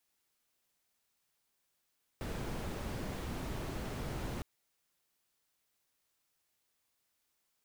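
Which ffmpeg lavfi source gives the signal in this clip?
ffmpeg -f lavfi -i "anoisesrc=color=brown:amplitude=0.0525:duration=2.21:sample_rate=44100:seed=1" out.wav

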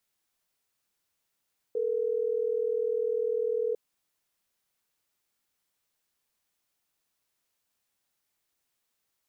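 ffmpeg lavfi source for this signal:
ffmpeg -f lavfi -i "aevalsrc='0.0376*(sin(2*PI*440*t)+sin(2*PI*480*t))*clip(min(mod(t,6),2-mod(t,6))/0.005,0,1)':duration=3.12:sample_rate=44100" out.wav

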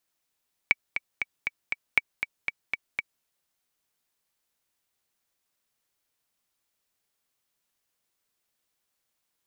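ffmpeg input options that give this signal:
ffmpeg -f lavfi -i "aevalsrc='pow(10,(-5.5-8.5*gte(mod(t,5*60/237),60/237))/20)*sin(2*PI*2280*mod(t,60/237))*exp(-6.91*mod(t,60/237)/0.03)':duration=2.53:sample_rate=44100" out.wav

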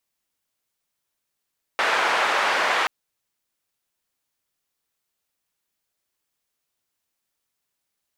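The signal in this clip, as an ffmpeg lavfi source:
ffmpeg -f lavfi -i "anoisesrc=color=white:duration=1.08:sample_rate=44100:seed=1,highpass=frequency=690,lowpass=frequency=1600,volume=-3.4dB" out.wav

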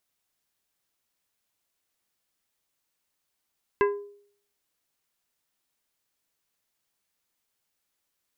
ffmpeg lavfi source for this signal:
ffmpeg -f lavfi -i "aevalsrc='0.141*pow(10,-3*t/0.59)*sin(2*PI*407*t)+0.0841*pow(10,-3*t/0.311)*sin(2*PI*1017.5*t)+0.0501*pow(10,-3*t/0.224)*sin(2*PI*1628*t)+0.0299*pow(10,-3*t/0.191)*sin(2*PI*2035*t)+0.0178*pow(10,-3*t/0.159)*sin(2*PI*2645.5*t)':duration=0.89:sample_rate=44100" out.wav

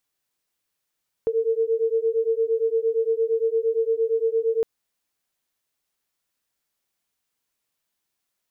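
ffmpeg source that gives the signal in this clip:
ffmpeg -f lavfi -i "aevalsrc='0.075*(sin(2*PI*448*t)+sin(2*PI*456.7*t))':duration=3.36:sample_rate=44100" out.wav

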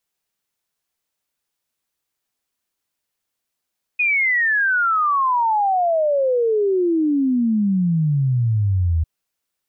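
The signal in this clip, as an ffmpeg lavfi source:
ffmpeg -f lavfi -i "aevalsrc='0.178*clip(min(t,5.05-t)/0.01,0,1)*sin(2*PI*2500*5.05/log(78/2500)*(exp(log(78/2500)*t/5.05)-1))':duration=5.05:sample_rate=44100" out.wav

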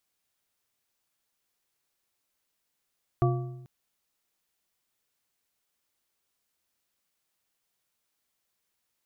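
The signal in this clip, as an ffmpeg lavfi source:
ffmpeg -f lavfi -i "aevalsrc='0.1*pow(10,-3*t/1.01)*sin(2*PI*129*t)+0.0668*pow(10,-3*t/0.745)*sin(2*PI*355.7*t)+0.0447*pow(10,-3*t/0.609)*sin(2*PI*697.1*t)+0.0299*pow(10,-3*t/0.524)*sin(2*PI*1152.4*t)':duration=0.44:sample_rate=44100" out.wav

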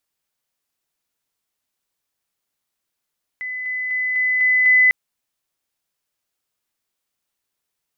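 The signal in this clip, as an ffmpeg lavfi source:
ffmpeg -f lavfi -i "aevalsrc='pow(10,(-25+3*floor(t/0.25))/20)*sin(2*PI*2010*t)':duration=1.5:sample_rate=44100" out.wav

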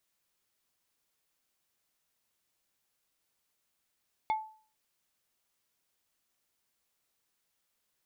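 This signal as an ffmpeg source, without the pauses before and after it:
ffmpeg -f lavfi -i "aevalsrc='0.0631*pow(10,-3*t/0.44)*sin(2*PI*871*t)+0.02*pow(10,-3*t/0.147)*sin(2*PI*2177.5*t)+0.00631*pow(10,-3*t/0.083)*sin(2*PI*3484*t)+0.002*pow(10,-3*t/0.064)*sin(2*PI*4355*t)+0.000631*pow(10,-3*t/0.047)*sin(2*PI*5661.5*t)':duration=0.45:sample_rate=44100" out.wav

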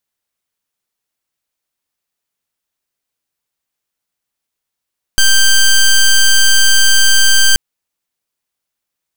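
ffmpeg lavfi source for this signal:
ffmpeg -f lavfi -i "aevalsrc='0.422*(2*lt(mod(1570*t,1),0.11)-1)':duration=2.38:sample_rate=44100" out.wav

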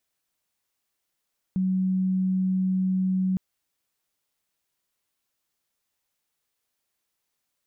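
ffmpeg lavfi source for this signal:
ffmpeg -f lavfi -i "aevalsrc='0.0891*sin(2*PI*187*t)':duration=1.81:sample_rate=44100" out.wav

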